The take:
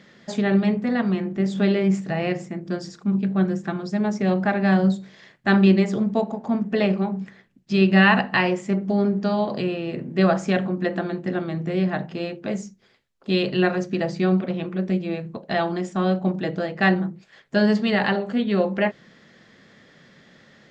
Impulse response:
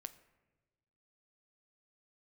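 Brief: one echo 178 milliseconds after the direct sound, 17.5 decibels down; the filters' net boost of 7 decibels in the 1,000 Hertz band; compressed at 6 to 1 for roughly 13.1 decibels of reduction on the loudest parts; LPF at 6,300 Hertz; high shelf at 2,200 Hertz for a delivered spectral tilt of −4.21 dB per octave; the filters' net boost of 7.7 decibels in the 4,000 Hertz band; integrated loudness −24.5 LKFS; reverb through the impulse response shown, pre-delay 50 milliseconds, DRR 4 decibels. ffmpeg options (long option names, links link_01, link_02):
-filter_complex "[0:a]lowpass=6300,equalizer=frequency=1000:width_type=o:gain=8.5,highshelf=frequency=2200:gain=4.5,equalizer=frequency=4000:width_type=o:gain=6,acompressor=threshold=-21dB:ratio=6,aecho=1:1:178:0.133,asplit=2[link_01][link_02];[1:a]atrim=start_sample=2205,adelay=50[link_03];[link_02][link_03]afir=irnorm=-1:irlink=0,volume=1dB[link_04];[link_01][link_04]amix=inputs=2:normalize=0,volume=0.5dB"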